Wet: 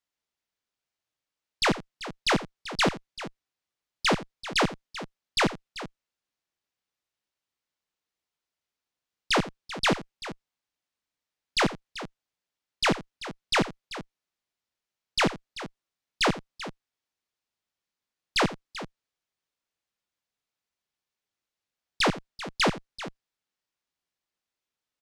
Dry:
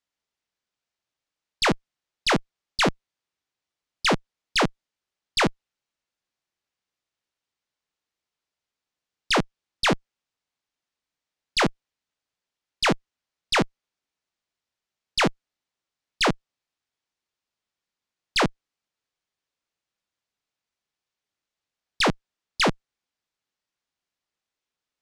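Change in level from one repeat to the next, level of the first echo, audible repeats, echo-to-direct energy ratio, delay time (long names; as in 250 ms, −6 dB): repeats not evenly spaced, −16.0 dB, 2, −12.0 dB, 85 ms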